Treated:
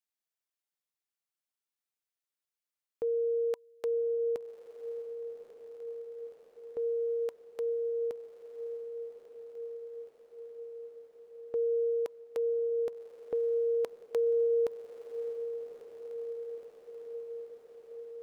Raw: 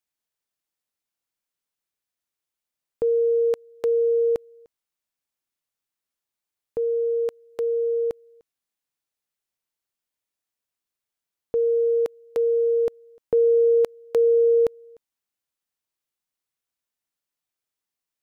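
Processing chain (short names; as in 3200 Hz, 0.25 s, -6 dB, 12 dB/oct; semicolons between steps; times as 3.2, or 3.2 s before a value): low shelf 270 Hz -10.5 dB; notch 980 Hz, Q 28; on a send: diffused feedback echo 1.13 s, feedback 75%, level -10 dB; on the sum: gain -7 dB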